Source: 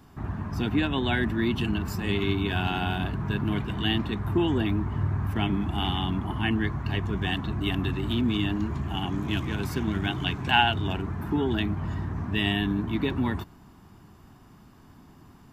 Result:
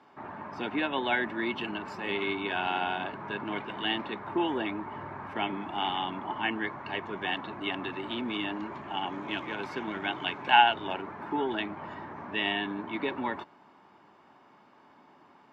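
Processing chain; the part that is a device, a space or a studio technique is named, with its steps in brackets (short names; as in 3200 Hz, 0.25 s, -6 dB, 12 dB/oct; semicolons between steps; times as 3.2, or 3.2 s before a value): tin-can telephone (BPF 410–3100 Hz; small resonant body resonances 570/880/2200 Hz, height 7 dB, ringing for 35 ms)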